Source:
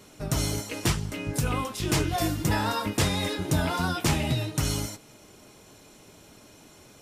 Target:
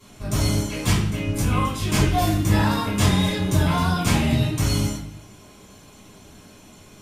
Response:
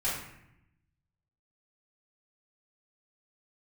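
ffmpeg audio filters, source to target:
-filter_complex "[1:a]atrim=start_sample=2205,asetrate=61740,aresample=44100[s0];[0:a][s0]afir=irnorm=-1:irlink=0" -ar 48000 -c:a libopus -b:a 96k

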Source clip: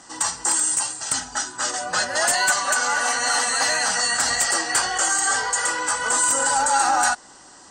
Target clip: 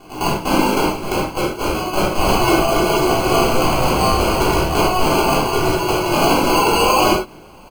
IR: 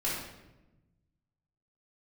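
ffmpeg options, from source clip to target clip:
-filter_complex "[0:a]aecho=1:1:0.9:0.42,acrusher=samples=24:mix=1:aa=0.000001[s0];[1:a]atrim=start_sample=2205,afade=t=out:st=0.16:d=0.01,atrim=end_sample=7497[s1];[s0][s1]afir=irnorm=-1:irlink=0,volume=0.891"

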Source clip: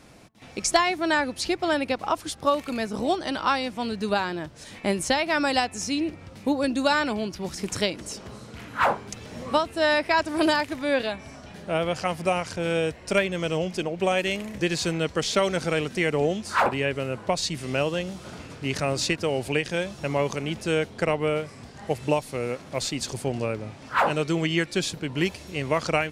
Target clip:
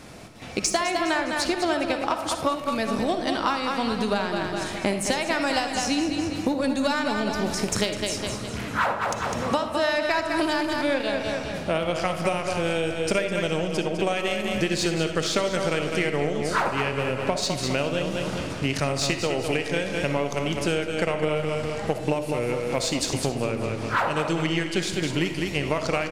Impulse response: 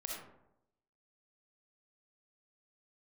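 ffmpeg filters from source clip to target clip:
-filter_complex "[0:a]aeval=exprs='0.376*(cos(1*acos(clip(val(0)/0.376,-1,1)))-cos(1*PI/2))+0.015*(cos(7*acos(clip(val(0)/0.376,-1,1)))-cos(7*PI/2))':c=same,aecho=1:1:204|408|612|816|1020:0.355|0.145|0.0596|0.0245|0.01,acompressor=threshold=0.0251:ratio=6,asplit=2[s0][s1];[1:a]atrim=start_sample=2205[s2];[s1][s2]afir=irnorm=-1:irlink=0,volume=0.841[s3];[s0][s3]amix=inputs=2:normalize=0,volume=2.11"

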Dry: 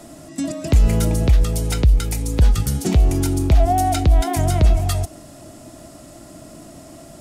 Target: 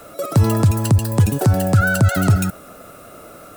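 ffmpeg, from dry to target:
-af "equalizer=f=4200:t=o:w=0.46:g=6.5,asetrate=89082,aresample=44100"

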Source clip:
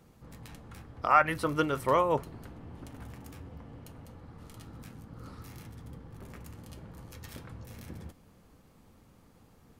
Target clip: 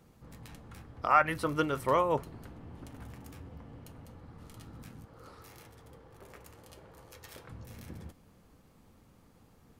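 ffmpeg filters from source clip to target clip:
-filter_complex "[0:a]asettb=1/sr,asplit=3[s0][s1][s2];[s0]atrim=end=5.054[s3];[s1]atrim=start=5.05:end=7.48,asetpts=PTS-STARTPTS,afade=t=in:d=0.004:c=qsin,afade=t=out:st=2.426:d=0.004:c=qsin,lowshelf=f=320:t=q:w=1.5:g=-8[s4];[s2]atrim=start=7.476[s5];[s3][s4]acrossfade=d=0.004:c1=hsin:c2=qsin[s6];[s6][s5]acrossfade=d=0.004:c1=qsin:c2=hsin,volume=0.841"

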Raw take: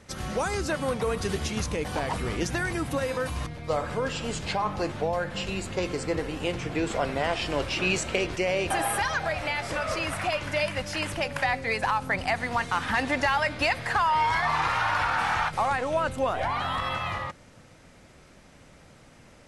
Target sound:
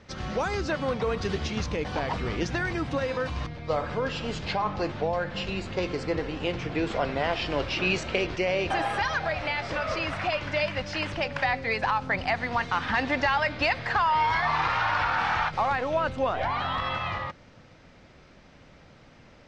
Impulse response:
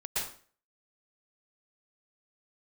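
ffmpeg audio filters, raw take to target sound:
-af "lowpass=f=5400:w=0.5412,lowpass=f=5400:w=1.3066"

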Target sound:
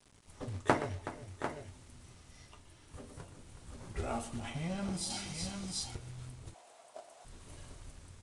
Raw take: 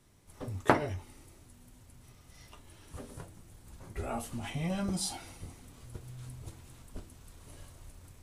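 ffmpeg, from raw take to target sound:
-filter_complex "[0:a]asplit=2[s0][s1];[s1]aecho=0:1:122|373|721|747:0.2|0.2|0.112|0.266[s2];[s0][s2]amix=inputs=2:normalize=0,acrusher=bits=9:mix=0:aa=0.000001,asettb=1/sr,asplit=3[s3][s4][s5];[s3]atrim=end=5.104[s6];[s4]atrim=start=5.1:end=5.95,asetpts=PTS-STARTPTS,afade=t=in:d=0.004:c=qsin,afade=t=out:st=0.846:d=0.004:c=qsin,equalizer=f=5100:t=o:w=2:g=9.5[s7];[s5]atrim=start=5.946[s8];[s6][s7]acrossfade=d=0.004:c1=hsin:c2=qsin[s9];[s9][s8]acrossfade=d=0.004:c1=qsin:c2=hsin,asettb=1/sr,asplit=3[s10][s11][s12];[s10]atrim=end=6.544[s13];[s11]atrim=start=6.54:end=7.25,asetpts=PTS-STARTPTS,afade=t=in:d=0.004:c=qsin,afade=t=out:st=0.706:d=0.004:c=qsin,highpass=f=670:t=q:w=7.9[s14];[s12]atrim=start=7.246[s15];[s13][s14]acrossfade=d=0.004:c1=hsin:c2=qsin[s16];[s16][s15]acrossfade=d=0.004:c1=qsin:c2=hsin,tremolo=f=0.52:d=0.42,acrossover=split=1800[s17][s18];[s17]acrusher=bits=4:mode=log:mix=0:aa=0.000001[s19];[s19][s18]amix=inputs=2:normalize=0,aresample=22050,aresample=44100"

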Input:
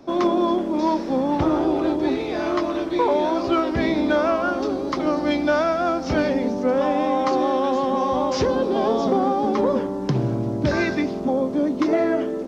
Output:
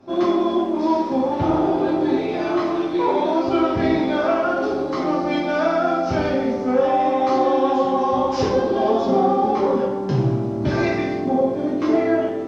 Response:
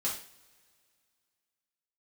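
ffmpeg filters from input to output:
-filter_complex "[0:a]highshelf=f=4900:g=-7.5[s0];[1:a]atrim=start_sample=2205,asetrate=27783,aresample=44100[s1];[s0][s1]afir=irnorm=-1:irlink=0,volume=0.473"

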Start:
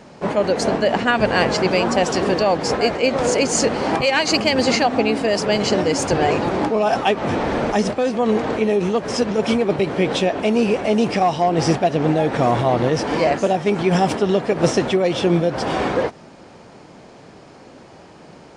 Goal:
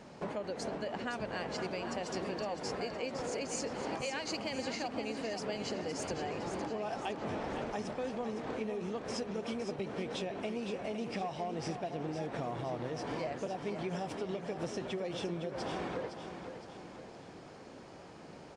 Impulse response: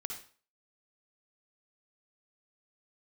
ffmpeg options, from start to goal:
-af "acompressor=threshold=0.0447:ratio=6,aecho=1:1:512|1024|1536|2048|2560:0.376|0.177|0.083|0.039|0.0183,volume=0.355"

